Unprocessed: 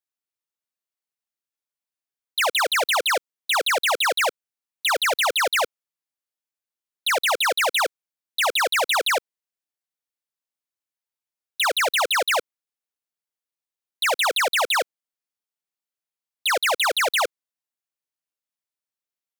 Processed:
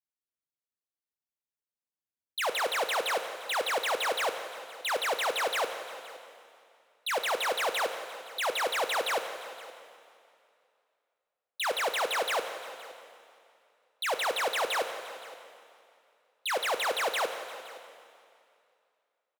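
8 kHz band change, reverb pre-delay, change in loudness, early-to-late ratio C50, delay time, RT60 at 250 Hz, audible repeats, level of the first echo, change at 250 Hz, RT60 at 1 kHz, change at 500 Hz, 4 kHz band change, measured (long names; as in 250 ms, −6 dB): −10.0 dB, 5 ms, −9.0 dB, 8.0 dB, 519 ms, 2.4 s, 1, −20.0 dB, −3.0 dB, 2.4 s, −5.5 dB, −10.0 dB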